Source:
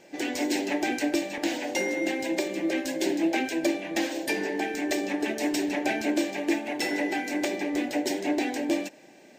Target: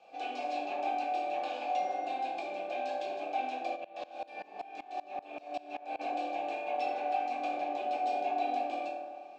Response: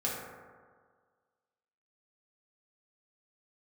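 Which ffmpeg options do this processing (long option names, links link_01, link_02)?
-filter_complex "[0:a]equalizer=frequency=125:width_type=o:width=1:gain=7,equalizer=frequency=1000:width_type=o:width=1:gain=6,equalizer=frequency=4000:width_type=o:width=1:gain=11,equalizer=frequency=8000:width_type=o:width=1:gain=4,acrossover=split=260|6500[link_01][link_02][link_03];[link_01]acompressor=threshold=-42dB:ratio=4[link_04];[link_02]acompressor=threshold=-28dB:ratio=4[link_05];[link_03]acompressor=threshold=-46dB:ratio=4[link_06];[link_04][link_05][link_06]amix=inputs=3:normalize=0,asplit=3[link_07][link_08][link_09];[link_07]bandpass=frequency=730:width_type=q:width=8,volume=0dB[link_10];[link_08]bandpass=frequency=1090:width_type=q:width=8,volume=-6dB[link_11];[link_09]bandpass=frequency=2440:width_type=q:width=8,volume=-9dB[link_12];[link_10][link_11][link_12]amix=inputs=3:normalize=0[link_13];[1:a]atrim=start_sample=2205[link_14];[link_13][link_14]afir=irnorm=-1:irlink=0,asplit=3[link_15][link_16][link_17];[link_15]afade=type=out:start_time=3.75:duration=0.02[link_18];[link_16]aeval=exprs='val(0)*pow(10,-23*if(lt(mod(-5.2*n/s,1),2*abs(-5.2)/1000),1-mod(-5.2*n/s,1)/(2*abs(-5.2)/1000),(mod(-5.2*n/s,1)-2*abs(-5.2)/1000)/(1-2*abs(-5.2)/1000))/20)':channel_layout=same,afade=type=in:start_time=3.75:duration=0.02,afade=type=out:start_time=5.99:duration=0.02[link_19];[link_17]afade=type=in:start_time=5.99:duration=0.02[link_20];[link_18][link_19][link_20]amix=inputs=3:normalize=0"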